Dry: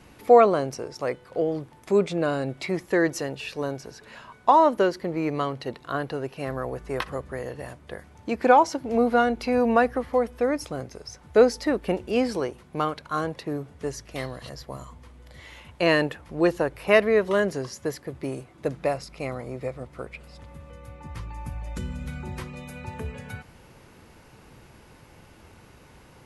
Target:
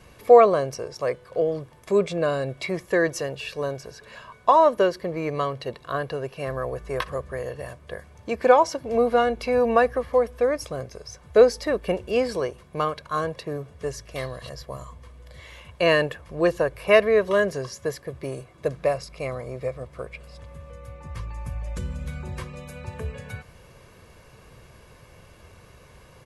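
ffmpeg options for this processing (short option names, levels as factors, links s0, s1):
-af "aecho=1:1:1.8:0.5"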